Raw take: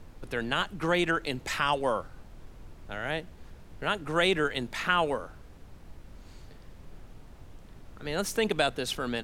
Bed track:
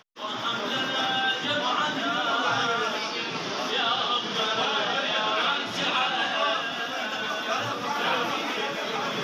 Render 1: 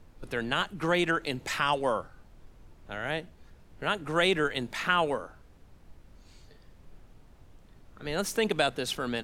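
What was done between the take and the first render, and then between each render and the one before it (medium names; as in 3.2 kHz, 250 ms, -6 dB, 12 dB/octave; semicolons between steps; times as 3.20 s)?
noise print and reduce 6 dB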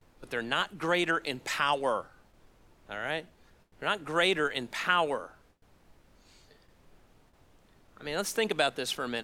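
gate with hold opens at -45 dBFS; bass shelf 190 Hz -10.5 dB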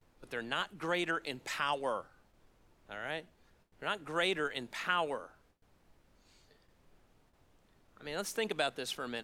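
trim -6 dB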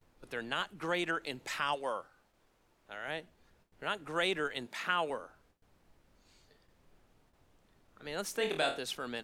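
1.75–3.08 s: bass shelf 260 Hz -8.5 dB; 4.66–5.10 s: high-pass 130 Hz 24 dB/octave; 8.37–8.79 s: flutter echo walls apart 4.3 m, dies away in 0.33 s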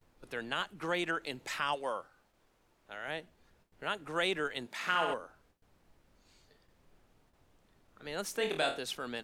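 4.73–5.14 s: flutter echo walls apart 10.9 m, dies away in 0.86 s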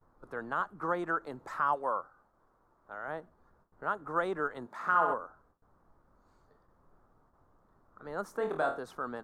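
resonant high shelf 1.8 kHz -13.5 dB, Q 3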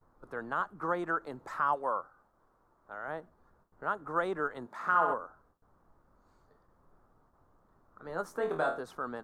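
8.08–8.81 s: doubling 12 ms -6.5 dB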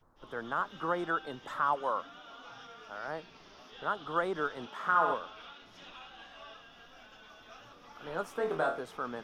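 add bed track -25 dB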